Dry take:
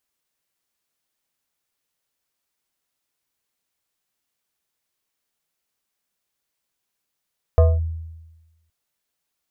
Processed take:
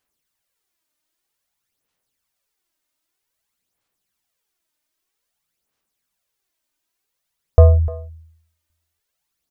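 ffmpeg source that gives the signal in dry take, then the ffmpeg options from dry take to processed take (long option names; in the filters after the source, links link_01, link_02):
-f lavfi -i "aevalsrc='0.398*pow(10,-3*t/1.15)*sin(2*PI*81.3*t+0.72*clip(1-t/0.22,0,1)*sin(2*PI*7.03*81.3*t))':duration=1.12:sample_rate=44100"
-af "aphaser=in_gain=1:out_gain=1:delay=3.3:decay=0.54:speed=0.52:type=sinusoidal,aecho=1:1:301:0.15"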